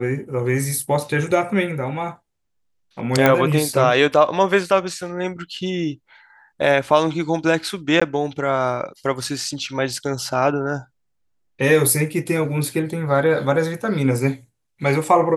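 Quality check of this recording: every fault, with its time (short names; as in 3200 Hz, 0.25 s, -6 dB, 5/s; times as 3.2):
3.26 pop -2 dBFS
8–8.02 gap 15 ms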